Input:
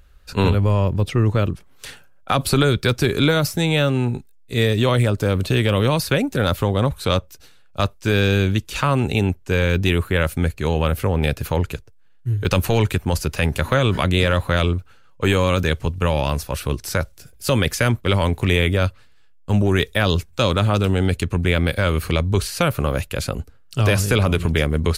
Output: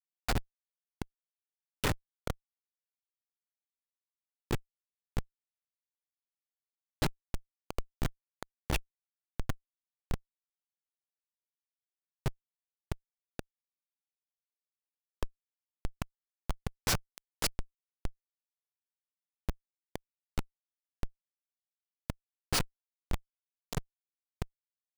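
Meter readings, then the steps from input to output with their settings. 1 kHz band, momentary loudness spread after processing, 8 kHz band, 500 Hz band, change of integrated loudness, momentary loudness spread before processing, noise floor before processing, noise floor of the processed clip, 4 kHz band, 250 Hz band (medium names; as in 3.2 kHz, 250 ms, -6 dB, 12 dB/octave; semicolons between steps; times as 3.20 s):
-20.5 dB, 14 LU, -12.0 dB, -26.5 dB, -20.0 dB, 8 LU, -48 dBFS, under -85 dBFS, -19.0 dB, -24.0 dB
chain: inverted gate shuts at -16 dBFS, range -31 dB; echo from a far wall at 110 m, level -10 dB; Schmitt trigger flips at -31.5 dBFS; trim +15 dB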